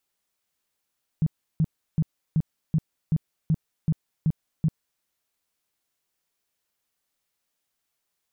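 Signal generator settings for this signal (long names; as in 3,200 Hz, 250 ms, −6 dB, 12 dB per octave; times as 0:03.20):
tone bursts 158 Hz, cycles 7, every 0.38 s, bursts 10, −17.5 dBFS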